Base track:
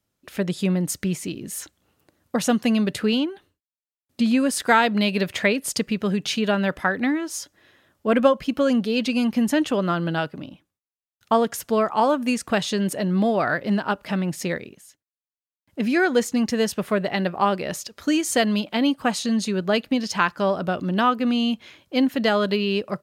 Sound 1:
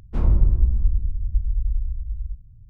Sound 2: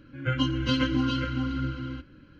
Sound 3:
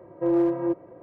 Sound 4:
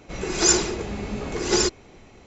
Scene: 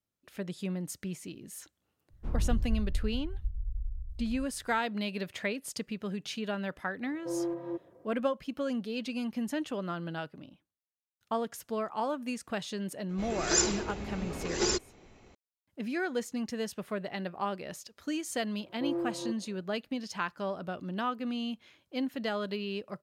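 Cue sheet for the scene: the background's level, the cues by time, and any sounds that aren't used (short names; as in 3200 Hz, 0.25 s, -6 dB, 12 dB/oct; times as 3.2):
base track -13 dB
2.1 add 1 -12.5 dB
7.04 add 3 -11.5 dB
13.09 add 4 -8 dB
18.59 add 3 -12 dB
not used: 2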